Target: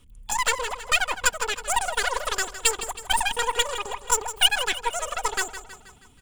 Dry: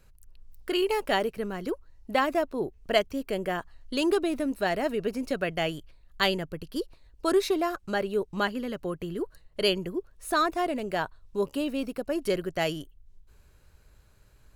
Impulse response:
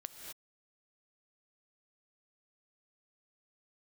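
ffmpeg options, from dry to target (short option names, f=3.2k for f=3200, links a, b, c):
-af "superequalizer=6b=0.631:9b=1.41:10b=2.82:13b=3.16,asetrate=103194,aresample=44100,aeval=exprs='0.447*(cos(1*acos(clip(val(0)/0.447,-1,1)))-cos(1*PI/2))+0.0398*(cos(8*acos(clip(val(0)/0.447,-1,1)))-cos(8*PI/2))':c=same,aecho=1:1:4.1:0.37,aecho=1:1:160|320|480|640|800:0.237|0.123|0.0641|0.0333|0.0173"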